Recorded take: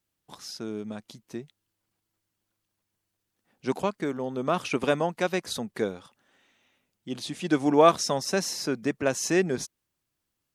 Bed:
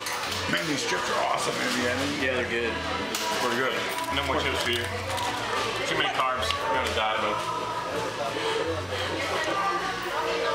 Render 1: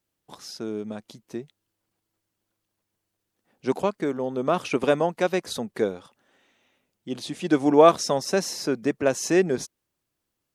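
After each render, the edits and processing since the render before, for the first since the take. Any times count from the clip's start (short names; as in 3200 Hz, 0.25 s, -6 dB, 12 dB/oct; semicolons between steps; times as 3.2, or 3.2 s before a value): bell 470 Hz +4.5 dB 1.8 oct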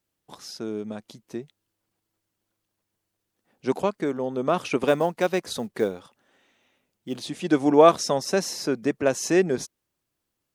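4.87–7.28 short-mantissa float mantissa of 4-bit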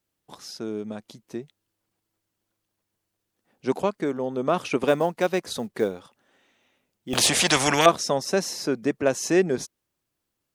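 7.13–7.86 spectral compressor 4:1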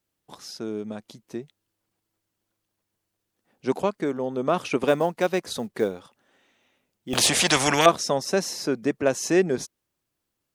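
nothing audible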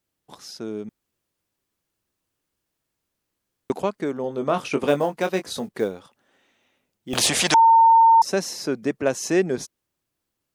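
0.89–3.7 room tone; 4.22–5.69 doubler 21 ms -8 dB; 7.54–8.22 bleep 909 Hz -10 dBFS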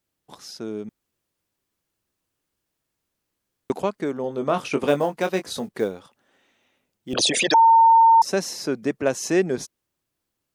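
7.13–7.57 formant sharpening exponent 3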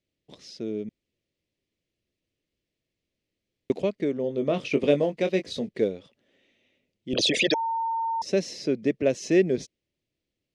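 LPF 4200 Hz 12 dB/oct; band shelf 1100 Hz -14.5 dB 1.3 oct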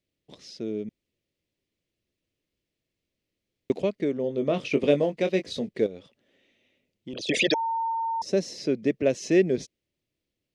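5.86–7.29 compressor, threshold -33 dBFS; 7.92–8.58 bell 2500 Hz -6 dB 1.1 oct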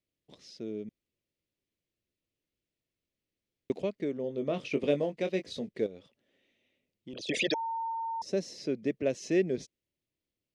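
gain -6.5 dB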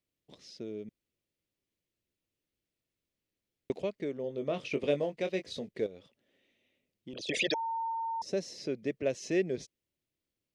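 dynamic EQ 240 Hz, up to -5 dB, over -42 dBFS, Q 1.1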